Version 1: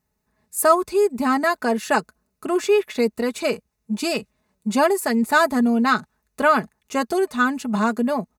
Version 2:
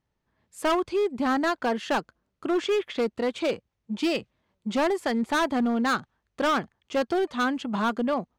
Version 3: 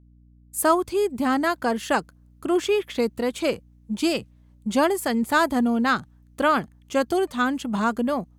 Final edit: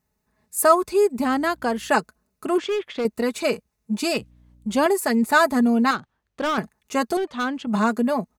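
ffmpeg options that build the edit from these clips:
-filter_complex "[2:a]asplit=2[s0][s1];[1:a]asplit=3[s2][s3][s4];[0:a]asplit=6[s5][s6][s7][s8][s9][s10];[s5]atrim=end=1.242[s11];[s0]atrim=start=1.238:end=1.892[s12];[s6]atrim=start=1.888:end=2.582[s13];[s2]atrim=start=2.578:end=3.052[s14];[s7]atrim=start=3.048:end=4.182[s15];[s1]atrim=start=4.178:end=4.862[s16];[s8]atrim=start=4.858:end=5.912[s17];[s3]atrim=start=5.908:end=6.582[s18];[s9]atrim=start=6.578:end=7.172[s19];[s4]atrim=start=7.168:end=7.672[s20];[s10]atrim=start=7.668[s21];[s11][s12]acrossfade=d=0.004:c1=hsin:c2=hsin[s22];[s22][s13]acrossfade=d=0.004:c1=hsin:c2=hsin[s23];[s23][s14]acrossfade=d=0.004:c1=hsin:c2=hsin[s24];[s24][s15]acrossfade=d=0.004:c1=hsin:c2=hsin[s25];[s25][s16]acrossfade=d=0.004:c1=hsin:c2=hsin[s26];[s26][s17]acrossfade=d=0.004:c1=hsin:c2=hsin[s27];[s27][s18]acrossfade=d=0.004:c1=hsin:c2=hsin[s28];[s28][s19]acrossfade=d=0.004:c1=hsin:c2=hsin[s29];[s29][s20]acrossfade=d=0.004:c1=hsin:c2=hsin[s30];[s30][s21]acrossfade=d=0.004:c1=hsin:c2=hsin"

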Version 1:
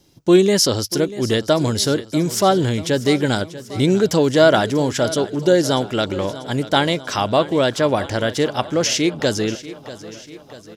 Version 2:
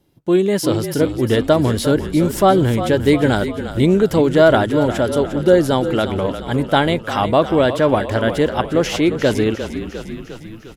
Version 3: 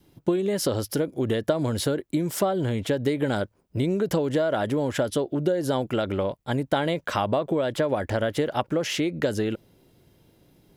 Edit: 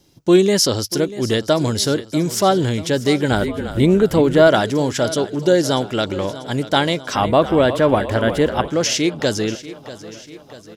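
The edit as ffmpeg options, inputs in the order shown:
-filter_complex "[1:a]asplit=2[s0][s1];[0:a]asplit=3[s2][s3][s4];[s2]atrim=end=3.312[s5];[s0]atrim=start=3.308:end=4.472[s6];[s3]atrim=start=4.468:end=7.152[s7];[s1]atrim=start=7.148:end=8.682[s8];[s4]atrim=start=8.678[s9];[s5][s6]acrossfade=d=0.004:c1=hsin:c2=hsin[s10];[s10][s7]acrossfade=d=0.004:c1=hsin:c2=hsin[s11];[s11][s8]acrossfade=d=0.004:c1=hsin:c2=hsin[s12];[s12][s9]acrossfade=d=0.004:c1=hsin:c2=hsin"

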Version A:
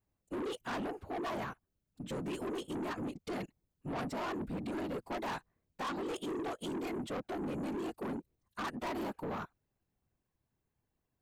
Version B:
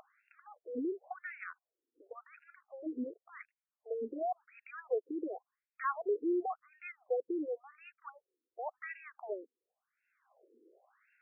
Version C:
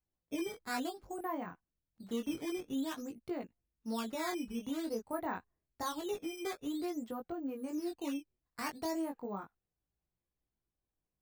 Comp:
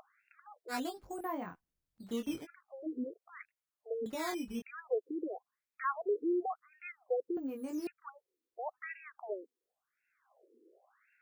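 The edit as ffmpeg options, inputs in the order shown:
-filter_complex "[2:a]asplit=3[s0][s1][s2];[1:a]asplit=4[s3][s4][s5][s6];[s3]atrim=end=0.74[s7];[s0]atrim=start=0.68:end=2.47[s8];[s4]atrim=start=2.41:end=4.062[s9];[s1]atrim=start=4.058:end=4.622[s10];[s5]atrim=start=4.618:end=7.372[s11];[s2]atrim=start=7.368:end=7.872[s12];[s6]atrim=start=7.868[s13];[s7][s8]acrossfade=d=0.06:c1=tri:c2=tri[s14];[s14][s9]acrossfade=d=0.06:c1=tri:c2=tri[s15];[s15][s10]acrossfade=d=0.004:c1=hsin:c2=hsin[s16];[s16][s11]acrossfade=d=0.004:c1=hsin:c2=hsin[s17];[s17][s12]acrossfade=d=0.004:c1=hsin:c2=hsin[s18];[s18][s13]acrossfade=d=0.004:c1=hsin:c2=hsin"

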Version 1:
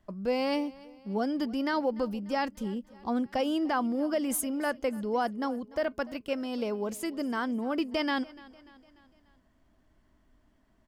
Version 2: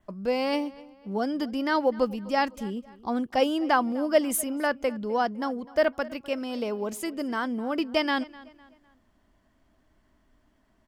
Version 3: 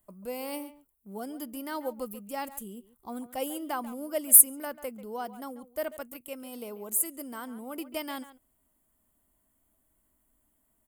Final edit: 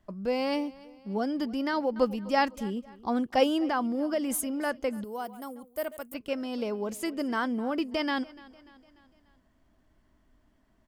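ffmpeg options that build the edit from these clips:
-filter_complex "[1:a]asplit=2[s0][s1];[0:a]asplit=4[s2][s3][s4][s5];[s2]atrim=end=1.962[s6];[s0]atrim=start=1.958:end=3.692[s7];[s3]atrim=start=3.688:end=5.042[s8];[2:a]atrim=start=5.038:end=6.142[s9];[s4]atrim=start=6.138:end=7.022[s10];[s1]atrim=start=7.018:end=7.702[s11];[s5]atrim=start=7.698[s12];[s6][s7]acrossfade=d=0.004:c1=hsin:c2=hsin[s13];[s13][s8]acrossfade=d=0.004:c1=hsin:c2=hsin[s14];[s14][s9]acrossfade=d=0.004:c1=hsin:c2=hsin[s15];[s15][s10]acrossfade=d=0.004:c1=hsin:c2=hsin[s16];[s16][s11]acrossfade=d=0.004:c1=hsin:c2=hsin[s17];[s17][s12]acrossfade=d=0.004:c1=hsin:c2=hsin"

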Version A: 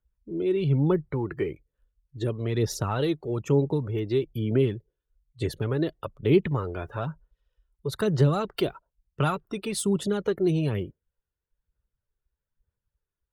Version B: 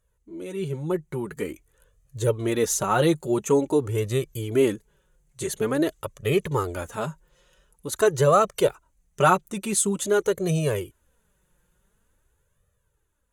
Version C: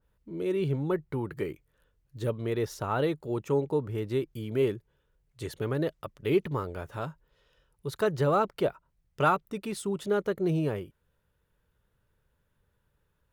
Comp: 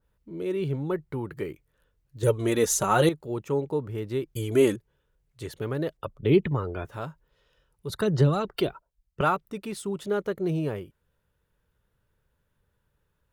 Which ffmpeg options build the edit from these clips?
-filter_complex "[1:a]asplit=2[s0][s1];[0:a]asplit=2[s2][s3];[2:a]asplit=5[s4][s5][s6][s7][s8];[s4]atrim=end=2.232[s9];[s0]atrim=start=2.228:end=3.092[s10];[s5]atrim=start=3.088:end=4.362[s11];[s1]atrim=start=4.358:end=4.762[s12];[s6]atrim=start=4.758:end=5.972[s13];[s2]atrim=start=5.968:end=6.852[s14];[s7]atrim=start=6.848:end=7.902[s15];[s3]atrim=start=7.898:end=9.212[s16];[s8]atrim=start=9.208[s17];[s9][s10]acrossfade=d=0.004:c1=hsin:c2=hsin[s18];[s18][s11]acrossfade=d=0.004:c1=hsin:c2=hsin[s19];[s19][s12]acrossfade=d=0.004:c1=hsin:c2=hsin[s20];[s20][s13]acrossfade=d=0.004:c1=hsin:c2=hsin[s21];[s21][s14]acrossfade=d=0.004:c1=hsin:c2=hsin[s22];[s22][s15]acrossfade=d=0.004:c1=hsin:c2=hsin[s23];[s23][s16]acrossfade=d=0.004:c1=hsin:c2=hsin[s24];[s24][s17]acrossfade=d=0.004:c1=hsin:c2=hsin"

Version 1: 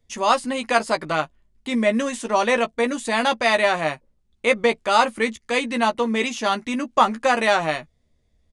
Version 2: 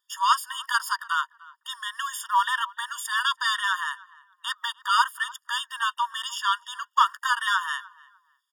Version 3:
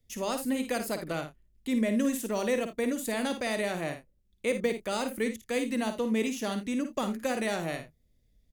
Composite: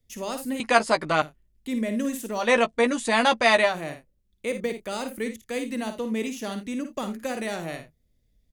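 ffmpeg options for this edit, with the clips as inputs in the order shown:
-filter_complex "[0:a]asplit=2[s0][s1];[2:a]asplit=3[s2][s3][s4];[s2]atrim=end=0.602[s5];[s0]atrim=start=0.598:end=1.222[s6];[s3]atrim=start=1.218:end=2.51[s7];[s1]atrim=start=2.35:end=3.77[s8];[s4]atrim=start=3.61[s9];[s5][s6]acrossfade=d=0.004:c1=hsin:c2=hsin[s10];[s10][s7]acrossfade=d=0.004:c1=hsin:c2=hsin[s11];[s11][s8]acrossfade=d=0.16:c1=tri:c2=tri[s12];[s12][s9]acrossfade=d=0.16:c1=tri:c2=tri"

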